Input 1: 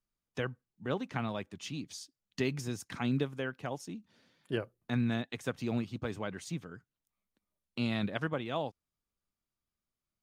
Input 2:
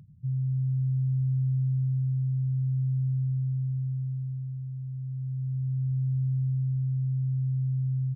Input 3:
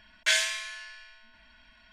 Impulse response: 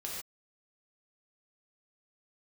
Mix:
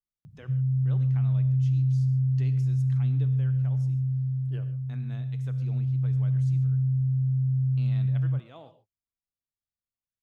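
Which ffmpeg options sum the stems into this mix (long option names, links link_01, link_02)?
-filter_complex "[0:a]equalizer=frequency=93:width=1.5:gain=6.5,volume=-15.5dB,asplit=2[link_01][link_02];[link_02]volume=-7.5dB[link_03];[1:a]adelay=250,volume=2.5dB,asplit=2[link_04][link_05];[link_05]volume=-21.5dB[link_06];[3:a]atrim=start_sample=2205[link_07];[link_03][link_06]amix=inputs=2:normalize=0[link_08];[link_08][link_07]afir=irnorm=-1:irlink=0[link_09];[link_01][link_04][link_09]amix=inputs=3:normalize=0"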